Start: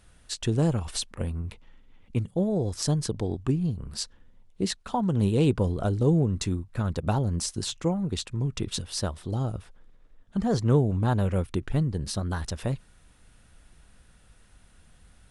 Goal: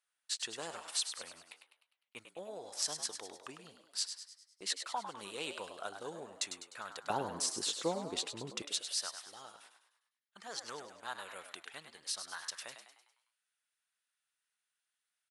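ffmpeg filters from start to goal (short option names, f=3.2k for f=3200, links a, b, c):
-filter_complex "[0:a]asetnsamples=n=441:p=0,asendcmd='7.1 highpass f 440;8.62 highpass f 1500',highpass=1.1k,agate=range=-20dB:threshold=-59dB:ratio=16:detection=peak,asplit=7[a][b][c][d][e][f][g];[b]adelay=101,afreqshift=75,volume=-8.5dB[h];[c]adelay=202,afreqshift=150,volume=-14.5dB[i];[d]adelay=303,afreqshift=225,volume=-20.5dB[j];[e]adelay=404,afreqshift=300,volume=-26.6dB[k];[f]adelay=505,afreqshift=375,volume=-32.6dB[l];[g]adelay=606,afreqshift=450,volume=-38.6dB[m];[a][h][i][j][k][l][m]amix=inputs=7:normalize=0,volume=-3dB"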